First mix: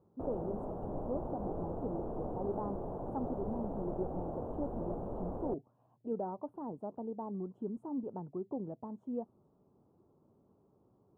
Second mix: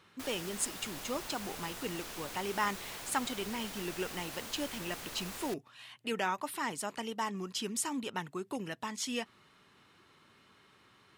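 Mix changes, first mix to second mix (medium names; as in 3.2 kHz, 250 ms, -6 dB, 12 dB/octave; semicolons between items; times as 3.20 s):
background -12.0 dB; master: remove inverse Chebyshev low-pass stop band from 1.9 kHz, stop band 50 dB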